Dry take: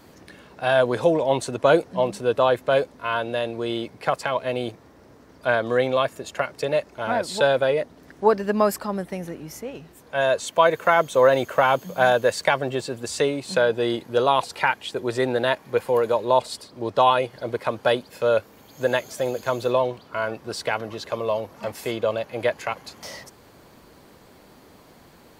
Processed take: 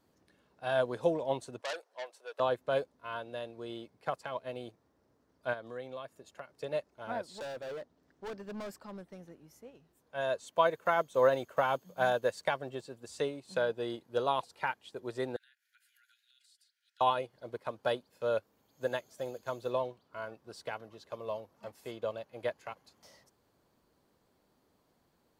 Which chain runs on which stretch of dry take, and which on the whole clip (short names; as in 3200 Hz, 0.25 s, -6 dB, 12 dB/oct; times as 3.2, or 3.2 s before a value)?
1.61–2.4 HPF 530 Hz 24 dB/oct + core saturation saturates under 3400 Hz
5.53–6.53 HPF 47 Hz + compressor 2:1, threshold -27 dBFS
7.27–9.31 bell 11000 Hz -10 dB 0.48 oct + hard clip -23.5 dBFS
15.36–17.01 Chebyshev high-pass 1400 Hz, order 10 + compressor 5:1, threshold -41 dBFS
whole clip: bell 2200 Hz -3.5 dB 0.77 oct; upward expander 1.5:1, over -39 dBFS; gain -8.5 dB